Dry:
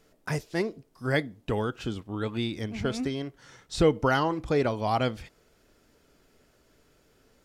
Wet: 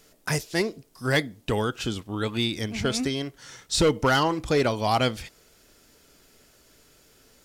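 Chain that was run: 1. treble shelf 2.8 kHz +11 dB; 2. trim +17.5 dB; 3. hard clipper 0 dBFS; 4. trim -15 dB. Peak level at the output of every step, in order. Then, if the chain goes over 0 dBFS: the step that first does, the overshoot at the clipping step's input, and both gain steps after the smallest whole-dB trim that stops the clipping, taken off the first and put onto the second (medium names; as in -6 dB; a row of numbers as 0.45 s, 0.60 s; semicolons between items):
-8.5 dBFS, +9.0 dBFS, 0.0 dBFS, -15.0 dBFS; step 2, 9.0 dB; step 2 +8.5 dB, step 4 -6 dB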